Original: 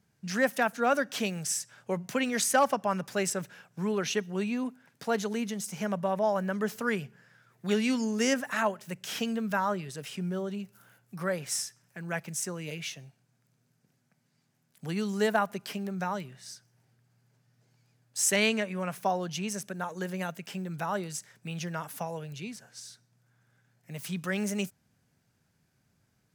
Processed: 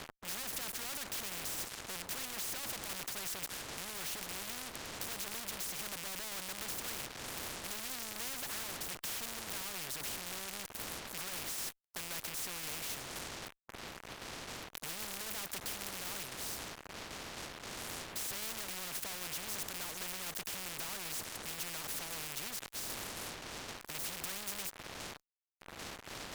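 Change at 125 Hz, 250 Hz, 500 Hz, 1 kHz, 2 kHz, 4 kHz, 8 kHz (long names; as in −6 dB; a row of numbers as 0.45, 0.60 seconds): −15.0, −19.5, −18.0, −13.5, −9.0, −2.0, −4.0 decibels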